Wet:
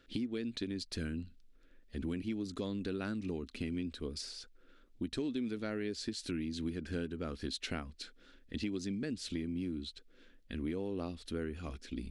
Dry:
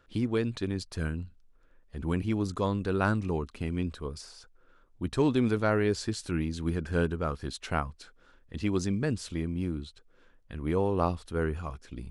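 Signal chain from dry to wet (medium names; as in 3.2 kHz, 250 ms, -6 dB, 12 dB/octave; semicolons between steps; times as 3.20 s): graphic EQ 125/250/1000/2000/4000 Hz -9/+9/-11/+4/+7 dB; compression 6:1, threshold -34 dBFS, peak gain reduction 15.5 dB; trim -1 dB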